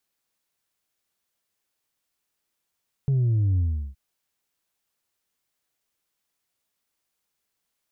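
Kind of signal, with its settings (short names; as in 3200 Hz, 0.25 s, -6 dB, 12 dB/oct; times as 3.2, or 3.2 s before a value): sub drop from 140 Hz, over 0.87 s, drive 2 dB, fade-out 0.37 s, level -19 dB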